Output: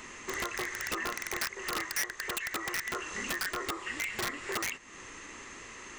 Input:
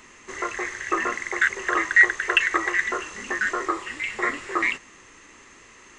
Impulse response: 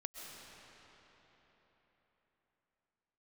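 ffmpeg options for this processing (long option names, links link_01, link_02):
-af "acompressor=threshold=-36dB:ratio=4,aeval=exprs='(mod(26.6*val(0)+1,2)-1)/26.6':channel_layout=same,volume=3dB"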